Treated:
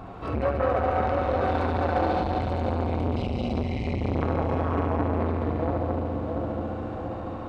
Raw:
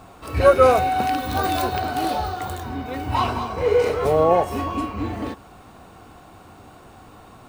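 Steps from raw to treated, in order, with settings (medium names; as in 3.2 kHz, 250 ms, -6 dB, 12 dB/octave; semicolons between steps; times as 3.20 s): 2.99–3.64 s: tone controls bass +7 dB, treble +11 dB; 2.11–4.22 s: spectral selection erased 260–2000 Hz; tape spacing loss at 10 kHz 32 dB; two-band feedback delay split 780 Hz, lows 683 ms, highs 185 ms, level -9 dB; compression 10:1, threshold -27 dBFS, peak gain reduction 17 dB; multi-head delay 71 ms, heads all three, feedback 73%, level -9 dB; transformer saturation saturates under 810 Hz; trim +6.5 dB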